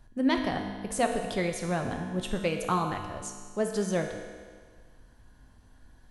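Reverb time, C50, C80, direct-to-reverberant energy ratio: 1.7 s, 5.0 dB, 6.5 dB, 3.0 dB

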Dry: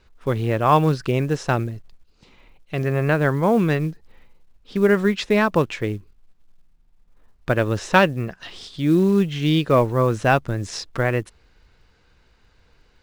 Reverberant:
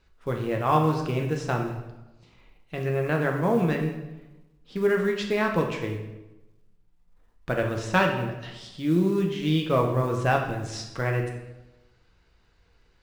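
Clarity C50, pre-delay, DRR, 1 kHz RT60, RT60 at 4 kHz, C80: 6.0 dB, 6 ms, 1.5 dB, 1.0 s, 0.75 s, 8.5 dB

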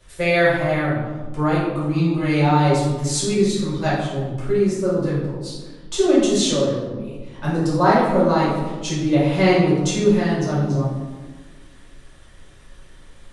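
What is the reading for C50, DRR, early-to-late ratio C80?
0.5 dB, −8.5 dB, 3.5 dB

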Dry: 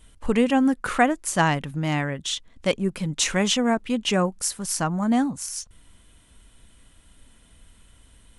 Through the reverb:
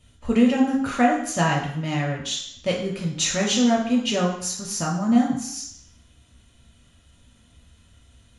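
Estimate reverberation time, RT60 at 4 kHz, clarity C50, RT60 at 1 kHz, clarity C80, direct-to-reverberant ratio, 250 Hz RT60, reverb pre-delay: 0.65 s, 0.70 s, 5.0 dB, 0.70 s, 8.5 dB, −2.0 dB, 0.65 s, 3 ms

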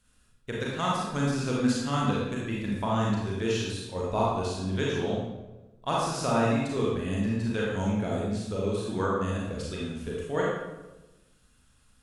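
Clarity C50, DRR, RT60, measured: −1.0 dB, −5.0 dB, 1.1 s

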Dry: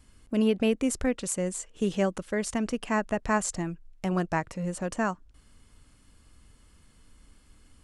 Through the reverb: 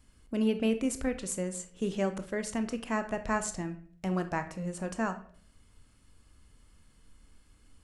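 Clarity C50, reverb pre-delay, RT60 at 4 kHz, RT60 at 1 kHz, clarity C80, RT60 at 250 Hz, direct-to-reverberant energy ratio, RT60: 12.0 dB, 22 ms, 0.40 s, 0.45 s, 17.0 dB, 0.65 s, 8.5 dB, 0.55 s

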